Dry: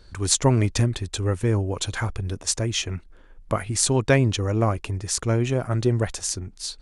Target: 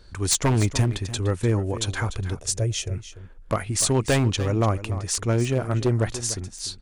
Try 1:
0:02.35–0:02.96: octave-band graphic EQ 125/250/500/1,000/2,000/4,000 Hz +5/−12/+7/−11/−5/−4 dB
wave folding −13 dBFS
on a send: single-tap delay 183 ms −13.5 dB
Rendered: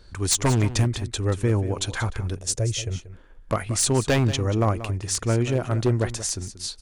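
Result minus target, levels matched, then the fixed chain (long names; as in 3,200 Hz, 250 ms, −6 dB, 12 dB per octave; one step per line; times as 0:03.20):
echo 112 ms early
0:02.35–0:02.96: octave-band graphic EQ 125/250/500/1,000/2,000/4,000 Hz +5/−12/+7/−11/−5/−4 dB
wave folding −13 dBFS
on a send: single-tap delay 295 ms −13.5 dB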